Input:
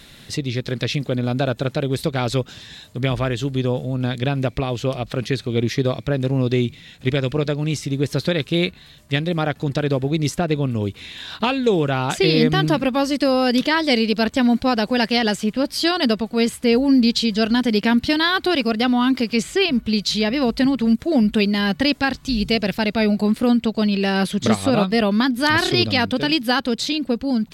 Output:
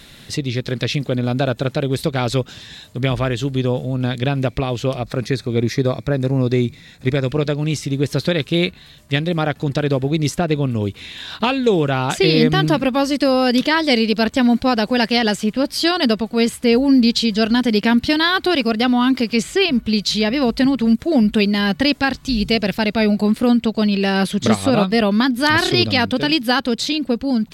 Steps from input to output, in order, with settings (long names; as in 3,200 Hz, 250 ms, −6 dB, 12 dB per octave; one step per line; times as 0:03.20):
0:04.99–0:07.29: parametric band 3,000 Hz −12.5 dB 0.29 octaves
level +2 dB